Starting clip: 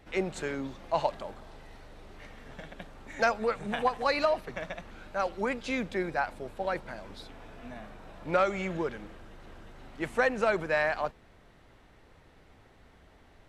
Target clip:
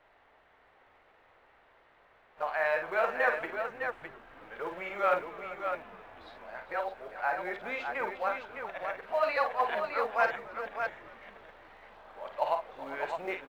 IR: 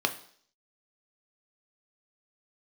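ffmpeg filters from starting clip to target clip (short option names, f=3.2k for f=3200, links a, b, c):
-filter_complex "[0:a]areverse,highshelf=f=6.9k:g=-10,asplit=2[a][b];[b]aecho=0:1:40|51|402|610:0.251|0.398|0.178|0.501[c];[a][c]amix=inputs=2:normalize=0,acrusher=bits=6:mode=log:mix=0:aa=0.000001,acrossover=split=500 3200:gain=0.1 1 0.158[d][e][f];[d][e][f]amix=inputs=3:normalize=0,asplit=2[g][h];[h]asplit=4[i][j][k][l];[i]adelay=273,afreqshift=-120,volume=-22dB[m];[j]adelay=546,afreqshift=-240,volume=-26.9dB[n];[k]adelay=819,afreqshift=-360,volume=-31.8dB[o];[l]adelay=1092,afreqshift=-480,volume=-36.6dB[p];[m][n][o][p]amix=inputs=4:normalize=0[q];[g][q]amix=inputs=2:normalize=0"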